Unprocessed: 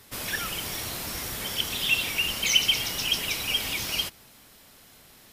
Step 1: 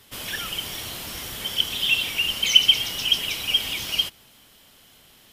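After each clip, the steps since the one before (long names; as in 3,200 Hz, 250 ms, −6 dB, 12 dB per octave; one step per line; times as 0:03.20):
parametric band 3,100 Hz +9 dB 0.31 octaves
level −1.5 dB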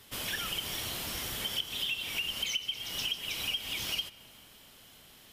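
downward compressor 12 to 1, threshold −28 dBFS, peak gain reduction 20.5 dB
on a send at −18 dB: convolution reverb RT60 4.1 s, pre-delay 15 ms
on the sum: level −2.5 dB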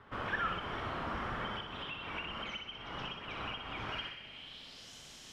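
flutter between parallel walls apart 10.5 metres, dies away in 0.61 s
low-pass filter sweep 1,300 Hz → 6,500 Hz, 0:03.89–0:04.94
level +1 dB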